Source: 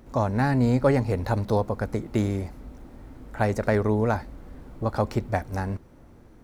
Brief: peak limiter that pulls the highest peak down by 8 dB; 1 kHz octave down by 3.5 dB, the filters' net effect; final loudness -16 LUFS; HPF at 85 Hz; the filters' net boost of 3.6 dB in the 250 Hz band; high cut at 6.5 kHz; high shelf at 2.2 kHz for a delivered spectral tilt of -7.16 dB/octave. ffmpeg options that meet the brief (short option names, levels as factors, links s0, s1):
-af "highpass=85,lowpass=6500,equalizer=f=250:t=o:g=4.5,equalizer=f=1000:t=o:g=-4,highshelf=f=2200:g=-6.5,volume=4.22,alimiter=limit=0.631:level=0:latency=1"